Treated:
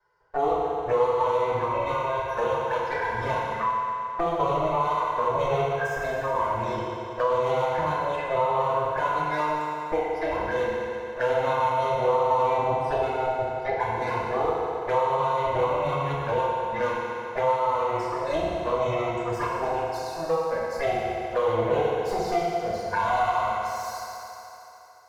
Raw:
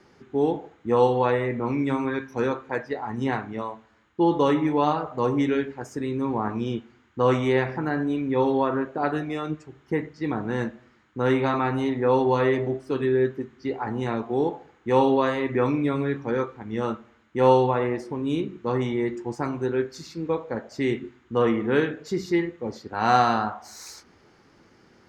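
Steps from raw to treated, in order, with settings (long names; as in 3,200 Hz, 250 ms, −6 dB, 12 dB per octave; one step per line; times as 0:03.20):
lower of the sound and its delayed copy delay 1.9 ms
noise reduction from a noise print of the clip's start 12 dB
noise gate with hold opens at −45 dBFS
flat-topped bell 1,100 Hz +13.5 dB
downward compressor 6 to 1, threshold −23 dBFS, peak gain reduction 15.5 dB
flanger swept by the level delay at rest 2.1 ms, full sweep at −26 dBFS
feedback delay network reverb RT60 2.3 s, low-frequency decay 0.75×, high-frequency decay 0.9×, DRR −5.5 dB
multiband upward and downward compressor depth 40%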